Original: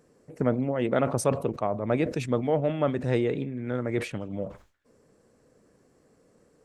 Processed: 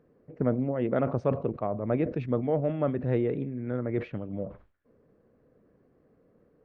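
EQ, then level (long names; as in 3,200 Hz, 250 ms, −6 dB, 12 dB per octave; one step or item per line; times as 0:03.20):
high-frequency loss of the air 190 metres
head-to-tape spacing loss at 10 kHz 28 dB
parametric band 880 Hz −3.5 dB 0.28 octaves
0.0 dB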